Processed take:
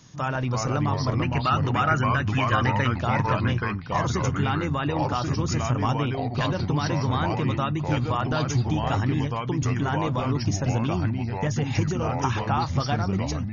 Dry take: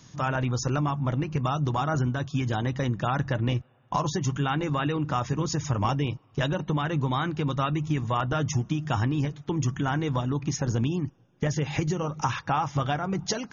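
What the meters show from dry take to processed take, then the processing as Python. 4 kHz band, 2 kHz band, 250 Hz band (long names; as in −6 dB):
+2.5 dB, +4.5 dB, +2.0 dB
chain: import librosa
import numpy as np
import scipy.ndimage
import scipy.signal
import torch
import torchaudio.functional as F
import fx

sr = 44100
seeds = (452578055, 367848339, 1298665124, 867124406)

y = fx.fade_out_tail(x, sr, length_s=0.51)
y = fx.spec_box(y, sr, start_s=1.23, length_s=1.74, low_hz=1200.0, high_hz=3100.0, gain_db=10)
y = fx.echo_pitch(y, sr, ms=298, semitones=-3, count=2, db_per_echo=-3.0)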